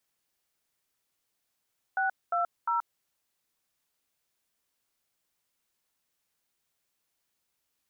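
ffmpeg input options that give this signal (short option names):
-f lavfi -i "aevalsrc='0.0422*clip(min(mod(t,0.352),0.128-mod(t,0.352))/0.002,0,1)*(eq(floor(t/0.352),0)*(sin(2*PI*770*mod(t,0.352))+sin(2*PI*1477*mod(t,0.352)))+eq(floor(t/0.352),1)*(sin(2*PI*697*mod(t,0.352))+sin(2*PI*1336*mod(t,0.352)))+eq(floor(t/0.352),2)*(sin(2*PI*941*mod(t,0.352))+sin(2*PI*1336*mod(t,0.352))))':d=1.056:s=44100"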